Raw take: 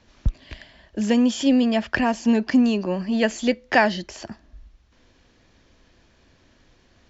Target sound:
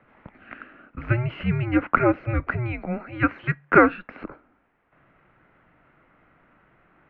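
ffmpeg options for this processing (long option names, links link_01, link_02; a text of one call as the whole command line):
ffmpeg -i in.wav -filter_complex "[0:a]highpass=frequency=440:width_type=q:width=0.5412,highpass=frequency=440:width_type=q:width=1.307,lowpass=frequency=2500:width_type=q:width=0.5176,lowpass=frequency=2500:width_type=q:width=0.7071,lowpass=frequency=2500:width_type=q:width=1.932,afreqshift=-360,asettb=1/sr,asplit=3[link_01][link_02][link_03];[link_01]atrim=end=2.724[link_04];[link_02]atrim=start=2.72:end=4.22,asetpts=PTS-STARTPTS,afade=type=in:duration=0.004:curve=qsin,afade=type=out:start_time=1.496:duration=0.004:curve=qsin,lowshelf=frequency=160:gain=-11[link_05];[link_03]atrim=start=4.216[link_06];[link_04][link_05]acrossfade=duration=0.004:curve1=hsin:curve2=qsin[link_07];[link_07][link_06]acrossfade=duration=0.004:curve1=qsin:curve2=hsin,volume=5dB" out.wav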